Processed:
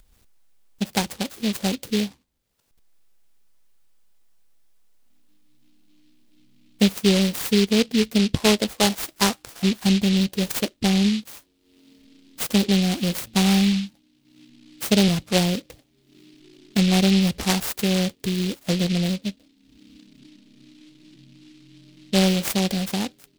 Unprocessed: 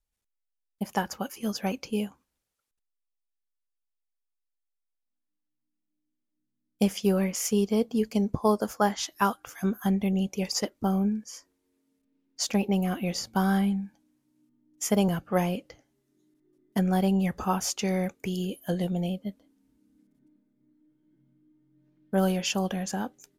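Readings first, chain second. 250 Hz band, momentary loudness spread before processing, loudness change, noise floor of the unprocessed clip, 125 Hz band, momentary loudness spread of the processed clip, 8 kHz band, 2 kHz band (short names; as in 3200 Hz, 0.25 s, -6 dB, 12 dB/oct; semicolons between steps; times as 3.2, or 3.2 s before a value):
+6.5 dB, 8 LU, +6.5 dB, -82 dBFS, +6.5 dB, 8 LU, +5.5 dB, +8.0 dB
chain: low shelf 430 Hz +5 dB; upward compressor, threshold -42 dBFS; noise-modulated delay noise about 3300 Hz, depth 0.19 ms; gain +2.5 dB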